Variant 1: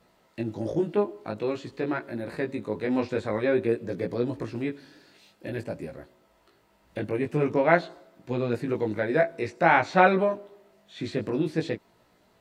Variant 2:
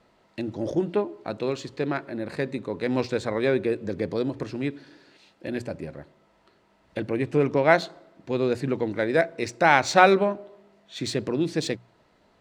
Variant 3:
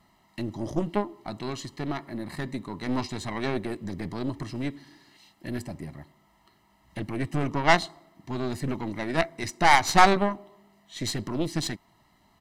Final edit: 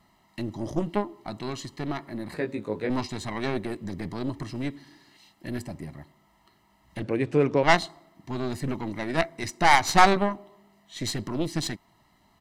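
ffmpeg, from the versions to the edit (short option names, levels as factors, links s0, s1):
-filter_complex "[2:a]asplit=3[s0][s1][s2];[s0]atrim=end=2.342[s3];[0:a]atrim=start=2.338:end=2.902[s4];[s1]atrim=start=2.898:end=7.032[s5];[1:a]atrim=start=7.028:end=7.632[s6];[s2]atrim=start=7.628[s7];[s3][s4]acrossfade=d=0.004:c1=hsin:c2=hsin[s8];[s8][s5]acrossfade=d=0.004:c1=hsin:c2=hsin[s9];[s9][s6]acrossfade=d=0.004:c1=hsin:c2=hsin[s10];[s10][s7]acrossfade=d=0.004:c1=hsin:c2=hsin"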